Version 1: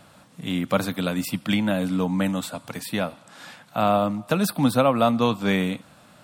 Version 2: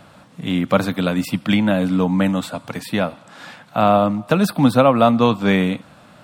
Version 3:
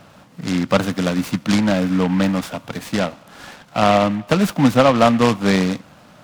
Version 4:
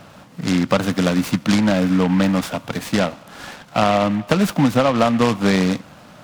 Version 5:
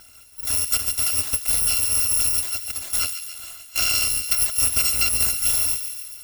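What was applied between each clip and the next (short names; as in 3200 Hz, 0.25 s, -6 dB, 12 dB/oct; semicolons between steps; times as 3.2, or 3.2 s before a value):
bell 13000 Hz -9 dB 1.9 oct; gain +6 dB
noise-modulated delay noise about 1600 Hz, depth 0.061 ms
compressor, threshold -15 dBFS, peak gain reduction 7.5 dB; gain +3 dB
FFT order left unsorted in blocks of 256 samples; thin delay 0.141 s, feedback 61%, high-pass 1800 Hz, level -9 dB; gain -5 dB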